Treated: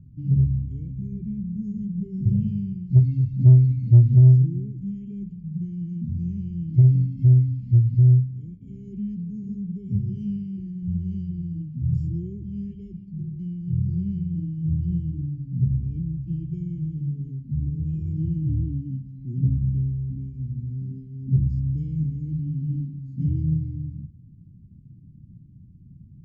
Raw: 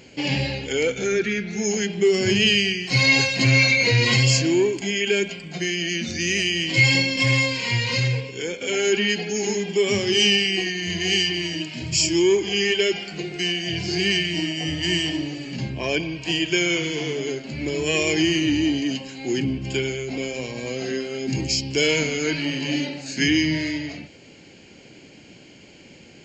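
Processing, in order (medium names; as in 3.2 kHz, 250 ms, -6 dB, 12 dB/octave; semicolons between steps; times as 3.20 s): inverse Chebyshev low-pass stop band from 510 Hz, stop band 60 dB; in parallel at -4 dB: saturation -22.5 dBFS, distortion -11 dB; on the sum: trim +6.5 dB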